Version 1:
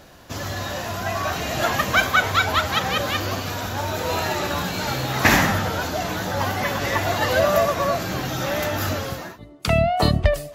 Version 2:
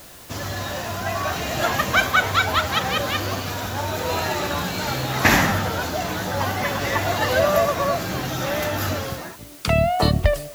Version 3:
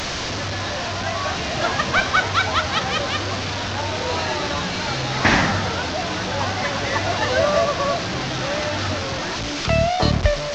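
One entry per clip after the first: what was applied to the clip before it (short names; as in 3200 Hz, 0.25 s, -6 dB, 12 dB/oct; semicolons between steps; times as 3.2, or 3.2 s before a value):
added noise white -45 dBFS
delta modulation 32 kbps, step -19.5 dBFS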